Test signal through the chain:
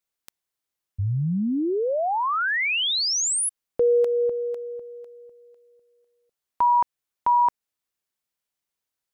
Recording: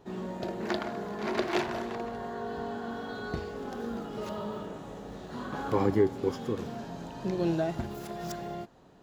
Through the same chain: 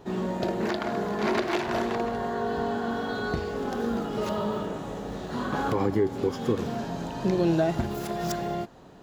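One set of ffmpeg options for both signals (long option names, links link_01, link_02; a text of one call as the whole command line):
ffmpeg -i in.wav -af "alimiter=limit=-22.5dB:level=0:latency=1:release=194,volume=7.5dB" out.wav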